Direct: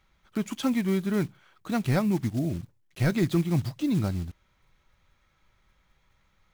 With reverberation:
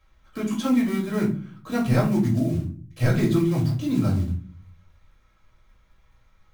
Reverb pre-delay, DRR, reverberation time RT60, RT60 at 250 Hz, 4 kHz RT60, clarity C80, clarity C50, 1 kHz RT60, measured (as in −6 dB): 3 ms, −4.0 dB, 0.40 s, 0.70 s, 0.25 s, 14.0 dB, 8.0 dB, 0.35 s